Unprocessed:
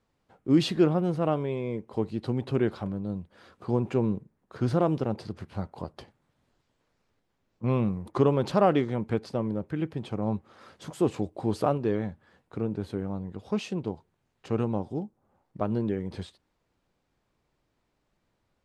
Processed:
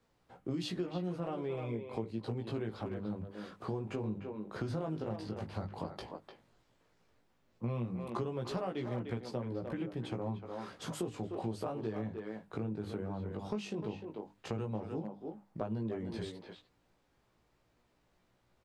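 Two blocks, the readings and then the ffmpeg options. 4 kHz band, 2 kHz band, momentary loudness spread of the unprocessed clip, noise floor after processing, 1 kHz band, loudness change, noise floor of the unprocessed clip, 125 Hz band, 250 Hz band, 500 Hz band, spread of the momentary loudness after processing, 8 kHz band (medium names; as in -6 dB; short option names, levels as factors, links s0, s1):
-7.5 dB, -7.5 dB, 14 LU, -74 dBFS, -10.5 dB, -11.0 dB, -76 dBFS, -9.0 dB, -10.5 dB, -10.5 dB, 7 LU, no reading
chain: -filter_complex "[0:a]acrossover=split=140|3000[s0][s1][s2];[s1]acompressor=threshold=0.0501:ratio=2.5[s3];[s0][s3][s2]amix=inputs=3:normalize=0,bandreject=f=50:t=h:w=6,bandreject=f=100:t=h:w=6,bandreject=f=150:t=h:w=6,bandreject=f=200:t=h:w=6,bandreject=f=250:t=h:w=6,bandreject=f=300:t=h:w=6,flanger=delay=16.5:depth=2.7:speed=0.11,asplit=2[s4][s5];[s5]adelay=300,highpass=300,lowpass=3400,asoftclip=type=hard:threshold=0.0501,volume=0.398[s6];[s4][s6]amix=inputs=2:normalize=0,acompressor=threshold=0.00891:ratio=4,volume=1.78"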